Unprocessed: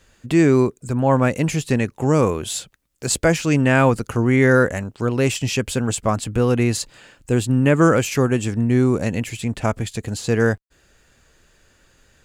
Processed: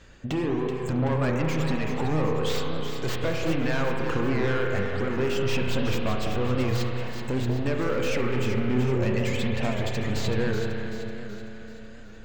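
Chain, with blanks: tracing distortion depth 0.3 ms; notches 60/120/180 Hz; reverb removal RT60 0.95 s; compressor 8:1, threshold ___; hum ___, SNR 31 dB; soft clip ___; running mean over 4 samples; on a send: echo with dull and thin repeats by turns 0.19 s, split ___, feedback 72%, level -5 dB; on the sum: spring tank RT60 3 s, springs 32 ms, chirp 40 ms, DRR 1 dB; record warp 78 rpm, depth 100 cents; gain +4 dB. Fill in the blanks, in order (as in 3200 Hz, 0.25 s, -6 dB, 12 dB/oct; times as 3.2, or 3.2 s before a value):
-25 dBFS, 60 Hz, -27.5 dBFS, 960 Hz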